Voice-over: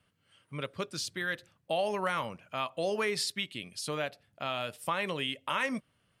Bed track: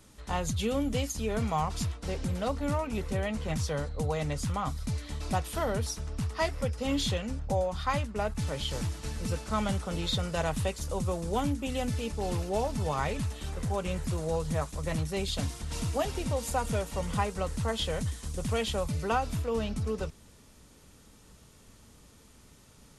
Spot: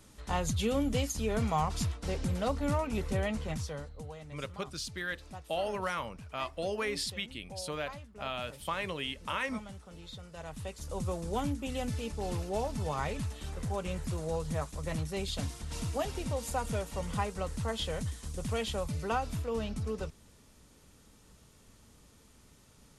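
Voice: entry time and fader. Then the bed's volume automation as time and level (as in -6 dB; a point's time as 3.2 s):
3.80 s, -3.0 dB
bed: 3.3 s -0.5 dB
4.24 s -16.5 dB
10.3 s -16.5 dB
11.03 s -3.5 dB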